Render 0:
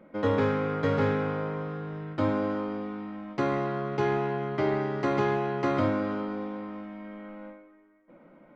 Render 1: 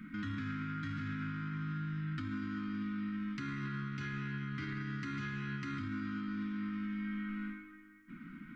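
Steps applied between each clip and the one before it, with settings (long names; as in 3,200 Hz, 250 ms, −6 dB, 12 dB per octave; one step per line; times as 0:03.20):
Chebyshev band-stop filter 260–1,400 Hz, order 3
downward compressor 2 to 1, threshold −49 dBFS, peak gain reduction 13 dB
brickwall limiter −42 dBFS, peak gain reduction 11 dB
level +10 dB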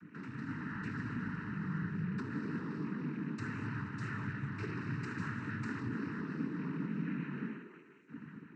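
automatic gain control gain up to 6 dB
flat-topped bell 2,900 Hz −11.5 dB 1 octave
cochlear-implant simulation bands 12
level −5 dB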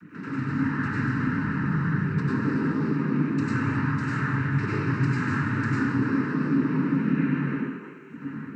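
dense smooth reverb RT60 0.54 s, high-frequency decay 0.5×, pre-delay 85 ms, DRR −6 dB
level +6.5 dB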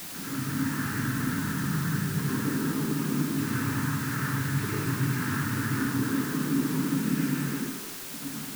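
bit-depth reduction 6 bits, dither triangular
level −3.5 dB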